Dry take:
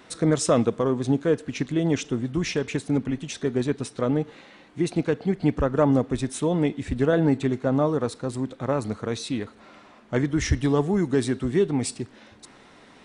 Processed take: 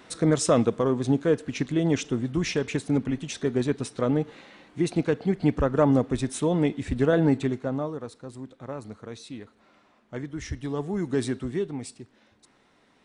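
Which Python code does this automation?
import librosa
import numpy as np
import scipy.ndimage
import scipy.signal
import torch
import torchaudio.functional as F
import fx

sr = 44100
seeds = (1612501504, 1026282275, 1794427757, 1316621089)

y = fx.gain(x, sr, db=fx.line((7.37, -0.5), (8.01, -11.0), (10.56, -11.0), (11.24, -2.5), (11.93, -11.5)))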